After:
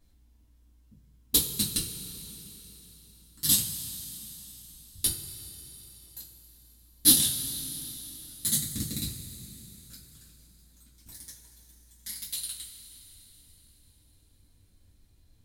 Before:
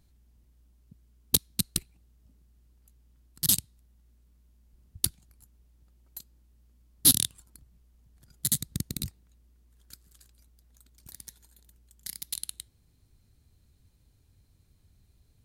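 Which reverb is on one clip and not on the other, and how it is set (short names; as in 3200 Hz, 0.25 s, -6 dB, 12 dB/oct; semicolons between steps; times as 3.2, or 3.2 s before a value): two-slope reverb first 0.29 s, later 4 s, from -18 dB, DRR -7.5 dB; gain -6.5 dB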